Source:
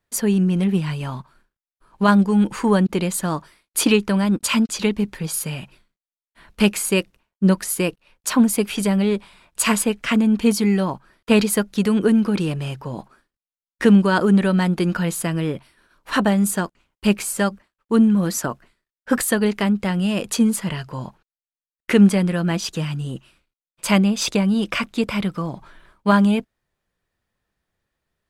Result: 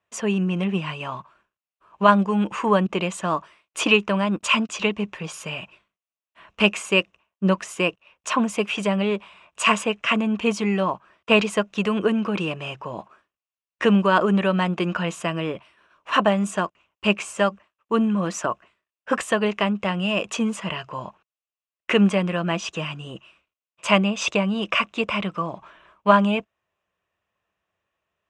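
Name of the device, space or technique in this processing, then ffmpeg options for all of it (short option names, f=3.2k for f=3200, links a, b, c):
car door speaker: -af "highpass=89,equalizer=f=140:t=q:w=4:g=-8,equalizer=f=250:t=q:w=4:g=-7,equalizer=f=630:t=q:w=4:g=7,equalizer=f=1.1k:t=q:w=4:g=9,equalizer=f=2.7k:t=q:w=4:g=10,equalizer=f=4.5k:t=q:w=4:g=-10,lowpass=f=7.1k:w=0.5412,lowpass=f=7.1k:w=1.3066,volume=-2.5dB"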